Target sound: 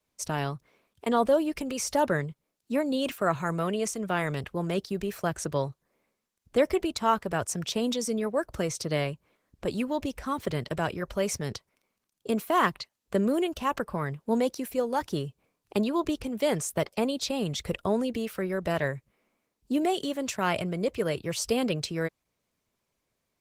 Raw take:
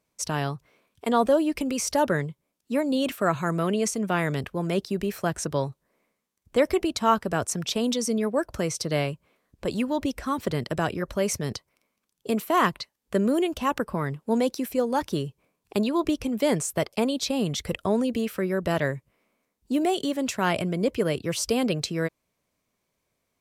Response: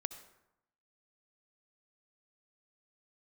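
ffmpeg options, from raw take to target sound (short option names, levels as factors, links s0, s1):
-af "adynamicequalizer=threshold=0.0126:dfrequency=260:dqfactor=1.4:tfrequency=260:tqfactor=1.4:attack=5:release=100:ratio=0.375:range=3:mode=cutabove:tftype=bell,volume=0.841" -ar 48000 -c:a libopus -b:a 16k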